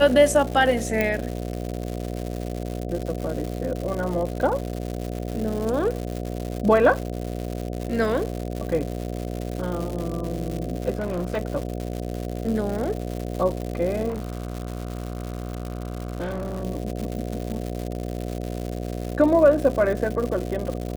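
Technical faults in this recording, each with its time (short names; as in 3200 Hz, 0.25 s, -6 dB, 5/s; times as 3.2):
buzz 60 Hz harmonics 12 -30 dBFS
crackle 210/s -28 dBFS
1.01 pop -9 dBFS
10.95–11.38 clipped -22.5 dBFS
14.08–16.64 clipped -25 dBFS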